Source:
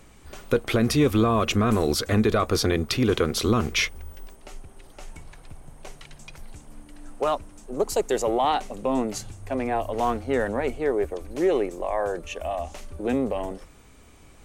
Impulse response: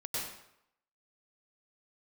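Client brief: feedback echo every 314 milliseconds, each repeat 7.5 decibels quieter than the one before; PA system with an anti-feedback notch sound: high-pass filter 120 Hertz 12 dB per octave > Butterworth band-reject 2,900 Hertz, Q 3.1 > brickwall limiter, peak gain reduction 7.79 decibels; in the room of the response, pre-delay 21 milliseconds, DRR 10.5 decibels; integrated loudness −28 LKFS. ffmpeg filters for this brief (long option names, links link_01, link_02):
-filter_complex "[0:a]aecho=1:1:314|628|942|1256|1570:0.422|0.177|0.0744|0.0312|0.0131,asplit=2[link_01][link_02];[1:a]atrim=start_sample=2205,adelay=21[link_03];[link_02][link_03]afir=irnorm=-1:irlink=0,volume=-13.5dB[link_04];[link_01][link_04]amix=inputs=2:normalize=0,highpass=120,asuperstop=centerf=2900:order=8:qfactor=3.1,volume=-1dB,alimiter=limit=-17dB:level=0:latency=1"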